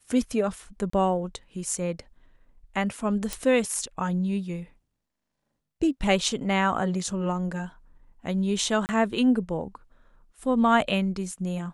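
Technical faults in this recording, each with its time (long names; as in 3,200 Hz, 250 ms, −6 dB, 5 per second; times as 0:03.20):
0:00.90–0:00.93: drop-out 34 ms
0:03.33: click
0:08.86–0:08.89: drop-out 29 ms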